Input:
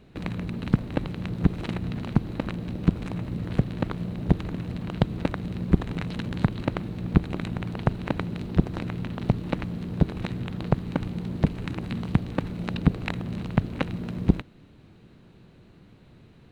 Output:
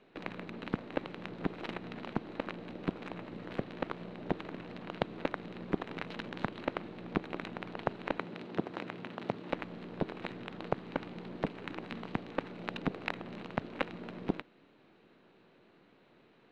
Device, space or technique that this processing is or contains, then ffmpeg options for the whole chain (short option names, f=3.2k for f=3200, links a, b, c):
crystal radio: -filter_complex "[0:a]highpass=360,lowpass=3.4k,aeval=exprs='if(lt(val(0),0),0.708*val(0),val(0))':c=same,asettb=1/sr,asplit=3[a][b][c];[a]atrim=end=8.184[d];[b]atrim=start=8.18:end=9.5,asetpts=PTS-STARTPTS,afade=t=in:d=0.004:c=qsin,afade=t=out:st=1.316:d=0.004:c=qsin,highpass=100[e];[c]atrim=start=9.496[f];[d][e]acrossfade=d=0.004:c1=hsin:c2=qsin[g];[g][f]acrossfade=d=0.004:c1=qsin:c2=hsin,volume=-1.5dB"